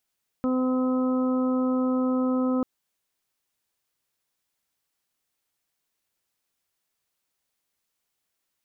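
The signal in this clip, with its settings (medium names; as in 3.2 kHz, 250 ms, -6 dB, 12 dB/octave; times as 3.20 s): steady additive tone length 2.19 s, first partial 256 Hz, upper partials -7/-19/-17/-13.5 dB, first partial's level -22 dB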